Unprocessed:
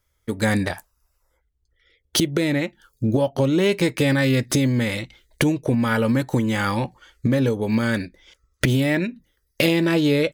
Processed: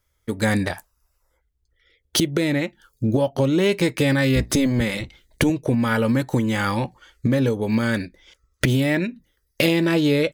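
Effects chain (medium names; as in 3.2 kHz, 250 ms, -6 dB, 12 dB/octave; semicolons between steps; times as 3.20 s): 4.35–5.50 s: octave divider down 1 oct, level -3 dB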